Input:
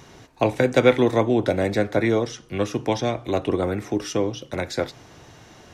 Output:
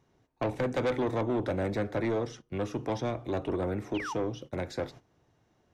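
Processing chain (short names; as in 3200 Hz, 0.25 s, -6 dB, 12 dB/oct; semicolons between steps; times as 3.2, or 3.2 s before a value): painted sound fall, 3.94–4.14, 800–3400 Hz -28 dBFS; tilt shelf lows +4.5 dB, about 1400 Hz; gate -35 dBFS, range -16 dB; soft clip -15.5 dBFS, distortion -8 dB; gain -8.5 dB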